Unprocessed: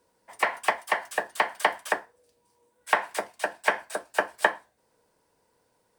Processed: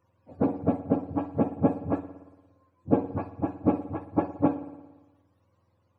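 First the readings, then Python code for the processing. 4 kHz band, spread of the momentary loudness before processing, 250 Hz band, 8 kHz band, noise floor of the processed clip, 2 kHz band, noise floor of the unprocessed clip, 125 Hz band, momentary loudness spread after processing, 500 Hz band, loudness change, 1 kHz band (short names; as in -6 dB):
under -25 dB, 7 LU, +21.0 dB, under -35 dB, -70 dBFS, -24.5 dB, -71 dBFS, n/a, 7 LU, +1.5 dB, -0.5 dB, -7.0 dB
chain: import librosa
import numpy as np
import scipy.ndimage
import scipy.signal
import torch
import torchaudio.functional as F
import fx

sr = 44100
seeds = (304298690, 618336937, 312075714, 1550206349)

y = fx.octave_mirror(x, sr, pivot_hz=710.0)
y = fx.rev_spring(y, sr, rt60_s=1.2, pass_ms=(57,), chirp_ms=40, drr_db=12.5)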